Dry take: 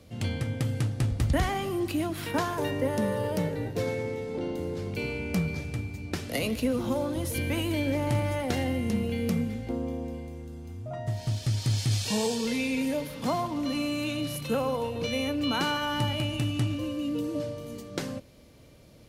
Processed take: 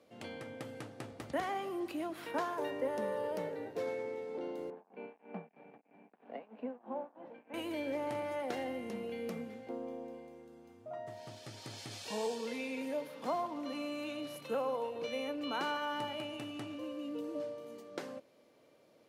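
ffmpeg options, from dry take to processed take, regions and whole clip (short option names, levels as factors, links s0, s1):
-filter_complex "[0:a]asettb=1/sr,asplit=3[s0][s1][s2];[s0]atrim=end=4.704[s3];[s1]atrim=start=4.7:end=7.54,asetpts=PTS-STARTPTS,afade=t=in:d=0.004:c=qsin,afade=t=out:st=2.836:d=0.004:c=qsin,tremolo=f=3.1:d=0.86,aeval=exprs='sgn(val(0))*max(abs(val(0))-0.00501,0)':c=same,highpass=f=180:w=0.5412,highpass=f=180:w=1.3066,equalizer=f=210:t=q:w=4:g=6,equalizer=f=330:t=q:w=4:g=-8,equalizer=f=530:t=q:w=4:g=-4,equalizer=f=790:t=q:w=4:g=5,equalizer=f=1300:t=q:w=4:g=-8,equalizer=f=2000:t=q:w=4:g=-8,lowpass=f=2100:w=0.5412,lowpass=f=2100:w=1.3066[s4];[s2]atrim=start=7.536[s5];[s3][s4]acrossfade=d=0.004:c1=hsin:c2=qsin[s6];[s6][s5]acrossfade=d=0.004:c1=qsin:c2=hsin,highpass=420,highshelf=f=2200:g=-12,volume=0.668"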